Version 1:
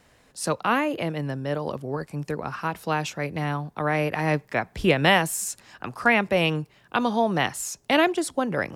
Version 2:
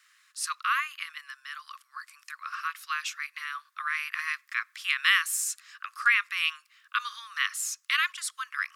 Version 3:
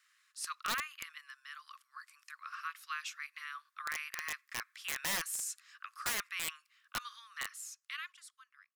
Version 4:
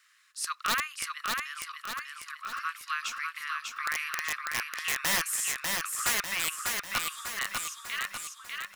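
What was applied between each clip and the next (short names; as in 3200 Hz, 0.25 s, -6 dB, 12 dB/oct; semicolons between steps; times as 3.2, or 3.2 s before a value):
Chebyshev high-pass 1100 Hz, order 8
ending faded out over 2.08 s; wrapped overs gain 19 dB; gain -8.5 dB
feedback echo 0.596 s, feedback 50%, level -3.5 dB; gain +7 dB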